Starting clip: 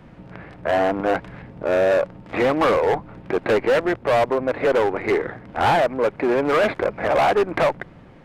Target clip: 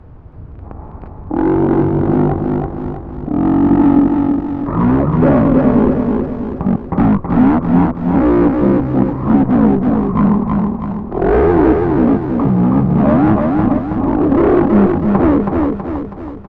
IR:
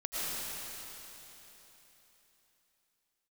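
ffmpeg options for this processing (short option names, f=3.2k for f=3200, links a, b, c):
-filter_complex "[0:a]lowshelf=f=200:g=6,aecho=1:1:162|324|486|648|810|972:0.668|0.321|0.154|0.0739|0.0355|0.017,acrossover=split=6200[a][b];[b]acompressor=threshold=-56dB:ratio=4:attack=1:release=60[c];[a][c]amix=inputs=2:normalize=0,asetrate=22050,aresample=44100,highshelf=f=4.9k:g=-9.5,volume=5dB"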